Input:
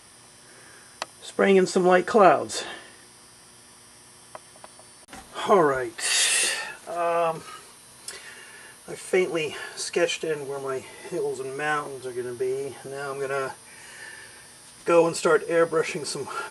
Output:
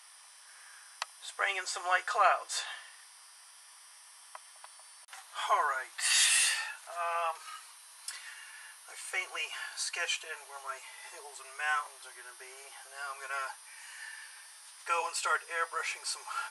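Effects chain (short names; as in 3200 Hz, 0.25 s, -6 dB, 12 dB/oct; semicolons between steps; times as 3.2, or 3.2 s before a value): HPF 850 Hz 24 dB/oct; gain -4 dB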